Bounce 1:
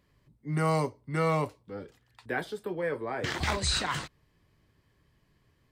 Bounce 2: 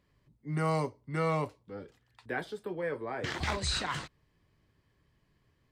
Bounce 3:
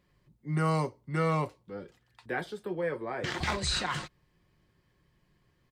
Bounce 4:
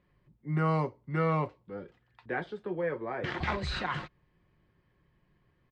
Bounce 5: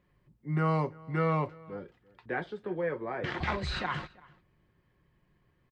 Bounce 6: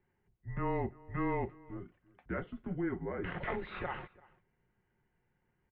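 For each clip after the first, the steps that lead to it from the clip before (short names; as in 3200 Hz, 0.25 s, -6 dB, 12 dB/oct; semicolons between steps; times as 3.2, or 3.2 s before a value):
high shelf 11000 Hz -8.5 dB; gain -3 dB
comb 5.6 ms, depth 31%; gain +1.5 dB
LPF 2700 Hz 12 dB/oct
outdoor echo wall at 58 m, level -23 dB
small resonant body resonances 280/580/2200 Hz, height 8 dB, ringing for 25 ms; mistuned SSB -180 Hz 190–3200 Hz; gain -6.5 dB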